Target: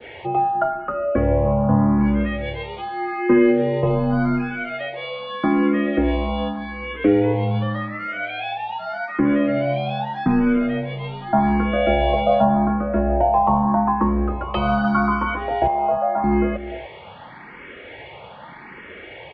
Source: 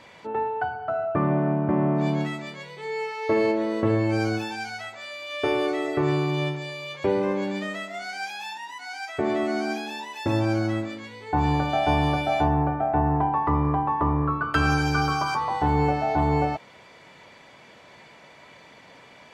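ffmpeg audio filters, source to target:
ffmpeg -i in.wav -filter_complex "[0:a]adynamicequalizer=threshold=0.00708:dfrequency=2300:dqfactor=1:tfrequency=2300:tqfactor=1:attack=5:release=100:ratio=0.375:range=2.5:mode=cutabove:tftype=bell,asplit=2[link_01][link_02];[link_02]acompressor=threshold=-35dB:ratio=6,volume=0dB[link_03];[link_01][link_03]amix=inputs=2:normalize=0,highpass=frequency=160:width_type=q:width=0.5412,highpass=frequency=160:width_type=q:width=1.307,lowpass=frequency=3300:width_type=q:width=0.5176,lowpass=frequency=3300:width_type=q:width=0.7071,lowpass=frequency=3300:width_type=q:width=1.932,afreqshift=-85,asettb=1/sr,asplit=3[link_04][link_05][link_06];[link_04]atrim=end=15.674[link_07];[link_05]atrim=start=15.67:end=16.24,asetpts=PTS-STARTPTS,afade=type=in:duration=0.004:curve=qsin,afade=type=out:start_time=0.566:duration=0.004:curve=qsin,acrossover=split=440 2400:gain=0.112 1 0.0631[link_08][link_09][link_10];[link_08][link_09][link_10]amix=inputs=3:normalize=0[link_11];[link_06]atrim=start=16.236[link_12];[link_07][link_11]acrossfade=duration=0.004:curve1=hsin:curve2=qsin[link_13];[link_13][link_12]acrossfade=duration=0.004:curve1=qsin:curve2=hsin,asplit=2[link_14][link_15];[link_15]adelay=297.4,volume=-14dB,highshelf=frequency=4000:gain=-6.69[link_16];[link_14][link_16]amix=inputs=2:normalize=0,asplit=2[link_17][link_18];[link_18]afreqshift=0.84[link_19];[link_17][link_19]amix=inputs=2:normalize=1,volume=7.5dB" out.wav

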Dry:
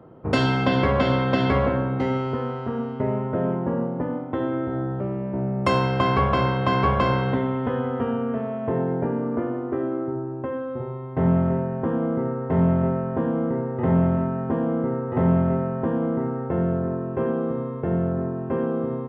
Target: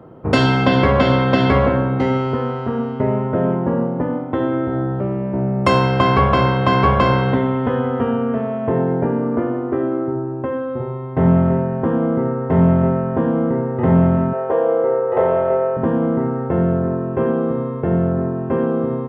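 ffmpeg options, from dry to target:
ffmpeg -i in.wav -filter_complex "[0:a]asettb=1/sr,asplit=3[link_01][link_02][link_03];[link_01]atrim=end=14.334[link_04];[link_02]atrim=start=14.33:end=15.77,asetpts=PTS-STARTPTS,afade=type=in:duration=0.004:curve=qsin,afade=type=out:start_time=1.436:duration=0.004:curve=qsin,lowshelf=frequency=330:width_type=q:width=3:gain=-13.5[link_05];[link_03]atrim=start=15.766[link_06];[link_04][link_05]acrossfade=duration=0.004:curve1=hsin:curve2=qsin[link_07];[link_07][link_06]acrossfade=duration=0.004:curve1=qsin:curve2=hsin,volume=6dB" out.wav

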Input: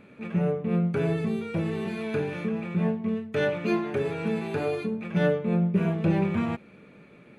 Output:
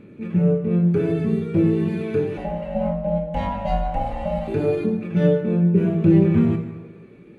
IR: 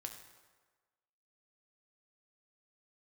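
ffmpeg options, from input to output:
-filter_complex "[0:a]lowshelf=frequency=520:width_type=q:width=1.5:gain=8,asettb=1/sr,asplit=3[link_01][link_02][link_03];[link_01]atrim=end=2.374[link_04];[link_02]atrim=start=2.37:end=4.48,asetpts=PTS-STARTPTS,afade=type=in:duration=0.004:curve=qsin,afade=type=out:start_time=2.106:duration=0.004:curve=qsin,aeval=exprs='val(0)*sin(2*PI*390*n/s)':channel_layout=same[link_05];[link_03]atrim=start=4.476[link_06];[link_04][link_05]acrossfade=duration=0.004:curve1=hsin:curve2=qsin[link_07];[link_07][link_06]acrossfade=duration=0.004:curve1=qsin:curve2=hsin,aphaser=in_gain=1:out_gain=1:delay=2.7:decay=0.25:speed=0.63:type=sinusoidal[link_08];[1:a]atrim=start_sample=2205[link_09];[link_08][link_09]afir=irnorm=-1:irlink=0,volume=1.5dB"

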